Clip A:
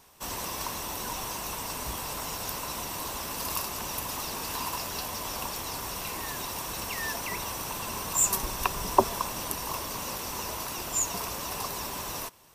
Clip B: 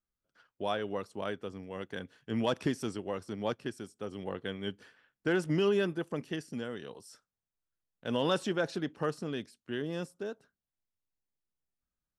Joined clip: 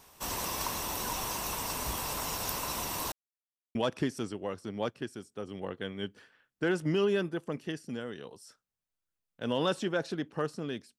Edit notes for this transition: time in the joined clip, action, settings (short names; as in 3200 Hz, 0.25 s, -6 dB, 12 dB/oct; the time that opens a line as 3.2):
clip A
3.12–3.75 mute
3.75 switch to clip B from 2.39 s